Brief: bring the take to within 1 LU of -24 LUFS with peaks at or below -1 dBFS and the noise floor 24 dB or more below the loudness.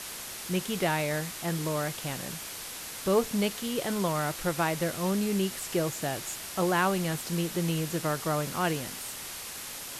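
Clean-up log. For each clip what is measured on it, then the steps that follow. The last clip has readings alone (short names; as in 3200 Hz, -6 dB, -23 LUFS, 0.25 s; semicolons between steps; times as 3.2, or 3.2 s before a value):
noise floor -40 dBFS; noise floor target -54 dBFS; loudness -30.0 LUFS; peak -12.5 dBFS; loudness target -24.0 LUFS
-> noise print and reduce 14 dB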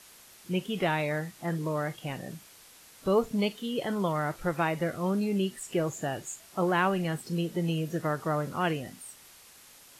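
noise floor -54 dBFS; noise floor target -55 dBFS
-> noise print and reduce 6 dB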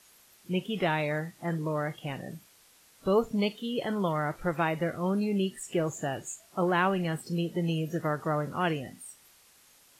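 noise floor -60 dBFS; loudness -30.5 LUFS; peak -12.5 dBFS; loudness target -24.0 LUFS
-> gain +6.5 dB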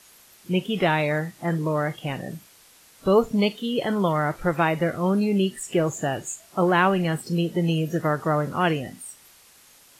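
loudness -24.0 LUFS; peak -6.0 dBFS; noise floor -54 dBFS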